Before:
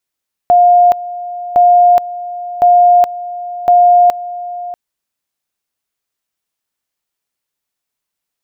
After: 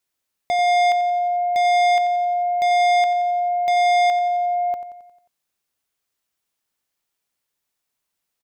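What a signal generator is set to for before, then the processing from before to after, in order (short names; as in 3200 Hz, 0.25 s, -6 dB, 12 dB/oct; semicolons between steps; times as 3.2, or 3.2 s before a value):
two-level tone 708 Hz -4 dBFS, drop 16.5 dB, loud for 0.42 s, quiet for 0.64 s, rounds 4
soft clip -18.5 dBFS; feedback echo 89 ms, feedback 56%, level -12.5 dB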